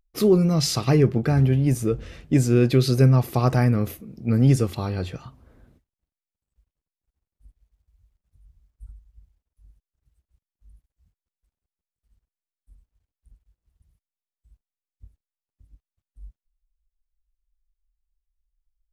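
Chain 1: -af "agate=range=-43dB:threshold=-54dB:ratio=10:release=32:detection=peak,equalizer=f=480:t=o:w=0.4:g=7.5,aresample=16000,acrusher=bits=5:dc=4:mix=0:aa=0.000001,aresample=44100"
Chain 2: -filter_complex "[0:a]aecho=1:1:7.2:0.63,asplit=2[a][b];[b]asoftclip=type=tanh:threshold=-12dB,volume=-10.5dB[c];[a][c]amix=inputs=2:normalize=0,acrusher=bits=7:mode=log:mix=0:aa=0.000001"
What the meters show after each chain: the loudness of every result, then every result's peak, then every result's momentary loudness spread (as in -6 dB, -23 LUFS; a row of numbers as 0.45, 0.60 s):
-19.5, -16.0 LUFS; -5.0, -1.5 dBFS; 11, 14 LU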